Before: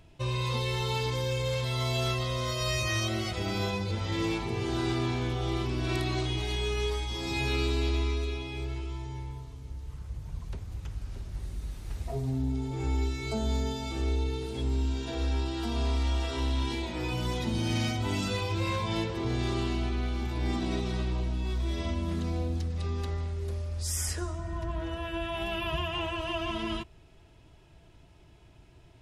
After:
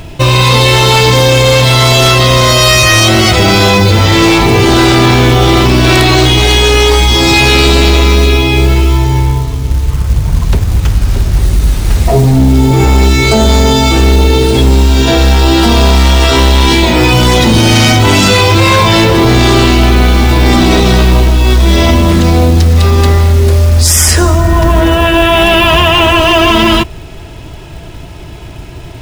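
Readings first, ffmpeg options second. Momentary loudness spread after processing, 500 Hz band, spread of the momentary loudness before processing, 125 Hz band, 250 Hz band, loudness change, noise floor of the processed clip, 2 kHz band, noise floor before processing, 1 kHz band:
6 LU, +24.5 dB, 10 LU, +23.5 dB, +24.0 dB, +24.5 dB, -26 dBFS, +26.5 dB, -55 dBFS, +26.0 dB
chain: -af "apsyclip=31dB,acrusher=bits=6:mode=log:mix=0:aa=0.000001,volume=-2dB"

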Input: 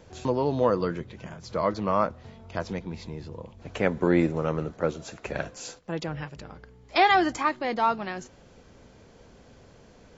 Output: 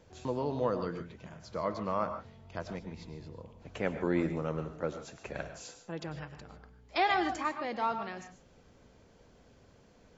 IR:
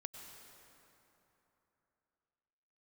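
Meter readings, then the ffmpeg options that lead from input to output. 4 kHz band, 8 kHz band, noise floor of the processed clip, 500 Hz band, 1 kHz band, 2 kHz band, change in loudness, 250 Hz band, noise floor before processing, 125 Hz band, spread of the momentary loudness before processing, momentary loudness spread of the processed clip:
-8.0 dB, n/a, -61 dBFS, -8.0 dB, -8.0 dB, -7.5 dB, -8.0 dB, -8.0 dB, -54 dBFS, -7.5 dB, 17 LU, 16 LU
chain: -filter_complex "[1:a]atrim=start_sample=2205,afade=t=out:st=0.21:d=0.01,atrim=end_sample=9702[a];[0:a][a]afir=irnorm=-1:irlink=0,volume=-3dB"

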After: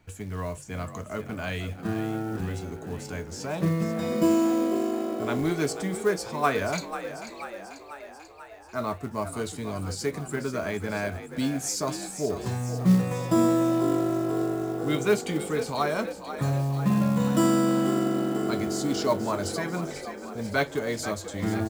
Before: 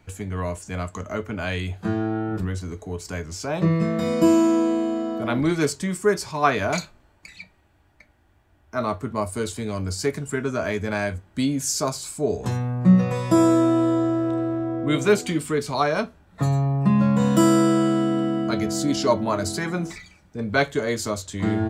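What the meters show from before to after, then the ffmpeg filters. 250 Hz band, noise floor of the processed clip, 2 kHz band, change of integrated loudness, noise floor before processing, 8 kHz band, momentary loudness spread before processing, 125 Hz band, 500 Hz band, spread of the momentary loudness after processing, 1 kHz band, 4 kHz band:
-4.5 dB, -44 dBFS, -4.5 dB, -4.5 dB, -59 dBFS, -4.0 dB, 13 LU, -5.0 dB, -4.0 dB, 13 LU, -4.0 dB, -4.0 dB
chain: -filter_complex "[0:a]asplit=9[a][b][c][d][e][f][g][h][i];[b]adelay=490,afreqshift=49,volume=-11dB[j];[c]adelay=980,afreqshift=98,volume=-15dB[k];[d]adelay=1470,afreqshift=147,volume=-19dB[l];[e]adelay=1960,afreqshift=196,volume=-23dB[m];[f]adelay=2450,afreqshift=245,volume=-27.1dB[n];[g]adelay=2940,afreqshift=294,volume=-31.1dB[o];[h]adelay=3430,afreqshift=343,volume=-35.1dB[p];[i]adelay=3920,afreqshift=392,volume=-39.1dB[q];[a][j][k][l][m][n][o][p][q]amix=inputs=9:normalize=0,acrusher=bits=6:mode=log:mix=0:aa=0.000001,volume=-5dB"

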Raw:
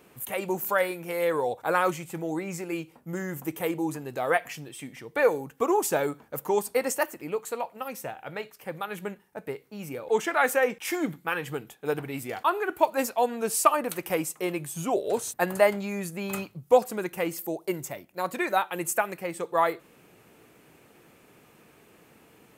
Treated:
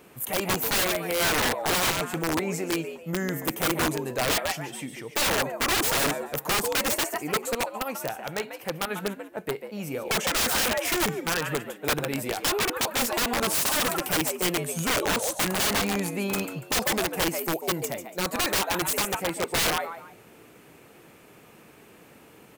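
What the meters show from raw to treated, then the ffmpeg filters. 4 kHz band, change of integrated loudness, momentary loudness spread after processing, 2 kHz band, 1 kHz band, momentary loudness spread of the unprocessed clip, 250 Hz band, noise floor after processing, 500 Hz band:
+14.5 dB, +2.5 dB, 9 LU, +4.0 dB, -1.0 dB, 14 LU, +2.0 dB, -52 dBFS, -3.0 dB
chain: -filter_complex "[0:a]asplit=4[a][b][c][d];[b]adelay=143,afreqshift=82,volume=-9.5dB[e];[c]adelay=286,afreqshift=164,volume=-19.7dB[f];[d]adelay=429,afreqshift=246,volume=-29.8dB[g];[a][e][f][g]amix=inputs=4:normalize=0,aeval=exprs='(mod(14.1*val(0)+1,2)-1)/14.1':c=same,volume=4dB"

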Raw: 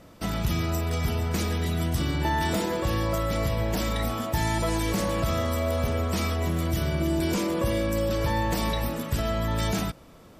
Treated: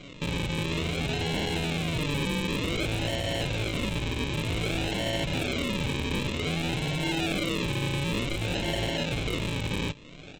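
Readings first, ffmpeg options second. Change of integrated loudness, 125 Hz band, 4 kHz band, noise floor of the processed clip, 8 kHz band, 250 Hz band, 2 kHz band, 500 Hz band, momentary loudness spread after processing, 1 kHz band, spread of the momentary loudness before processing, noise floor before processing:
-2.0 dB, -3.0 dB, +4.5 dB, -45 dBFS, -3.0 dB, -2.0 dB, +2.5 dB, -4.0 dB, 2 LU, -6.5 dB, 2 LU, -50 dBFS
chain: -af "aecho=1:1:6.9:0.91,aresample=16000,acrusher=samples=18:mix=1:aa=0.000001:lfo=1:lforange=10.8:lforate=0.54,aresample=44100,alimiter=limit=-21.5dB:level=0:latency=1:release=342,aeval=exprs='0.0447*(abs(mod(val(0)/0.0447+3,4)-2)-1)':c=same,superequalizer=10b=0.708:12b=3.55:13b=3.16,volume=2.5dB"

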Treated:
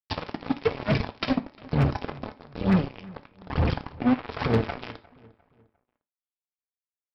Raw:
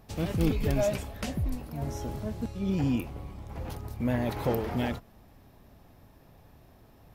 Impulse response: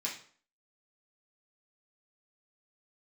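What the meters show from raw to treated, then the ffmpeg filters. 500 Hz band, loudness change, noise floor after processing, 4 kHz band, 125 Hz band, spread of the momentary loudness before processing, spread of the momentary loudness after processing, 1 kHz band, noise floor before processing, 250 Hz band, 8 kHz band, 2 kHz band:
+2.0 dB, +4.0 dB, under -85 dBFS, +6.0 dB, +3.5 dB, 12 LU, 16 LU, +6.0 dB, -57 dBFS, +4.0 dB, under -15 dB, +6.5 dB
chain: -filter_complex "[0:a]highpass=f=68:w=0.5412,highpass=f=68:w=1.3066,adynamicequalizer=threshold=0.00794:dfrequency=130:dqfactor=0.88:tfrequency=130:tqfactor=0.88:attack=5:release=100:ratio=0.375:range=3.5:mode=boostabove:tftype=bell,acontrast=87,alimiter=limit=-16dB:level=0:latency=1:release=46,acompressor=threshold=-29dB:ratio=4,aphaser=in_gain=1:out_gain=1:delay=4.1:decay=0.78:speed=1.1:type=triangular,aresample=11025,acrusher=bits=3:mix=0:aa=0.5,aresample=44100,asoftclip=type=hard:threshold=-14dB,asplit=2[a][b];[b]adelay=352,lowpass=f=2.5k:p=1,volume=-22dB,asplit=2[c][d];[d]adelay=352,lowpass=f=2.5k:p=1,volume=0.4,asplit=2[e][f];[f]adelay=352,lowpass=f=2.5k:p=1,volume=0.4[g];[a][c][e][g]amix=inputs=4:normalize=0,asplit=2[h][i];[1:a]atrim=start_sample=2205,atrim=end_sample=4410[j];[i][j]afir=irnorm=-1:irlink=0,volume=-9.5dB[k];[h][k]amix=inputs=2:normalize=0,volume=1dB"

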